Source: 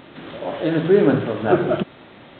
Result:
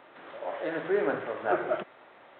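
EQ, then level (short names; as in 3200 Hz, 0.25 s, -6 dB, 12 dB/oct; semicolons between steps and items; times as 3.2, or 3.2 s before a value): dynamic EQ 2000 Hz, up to +5 dB, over -44 dBFS, Q 3.4; three-band isolator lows -20 dB, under 460 Hz, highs -14 dB, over 2200 Hz; -5.0 dB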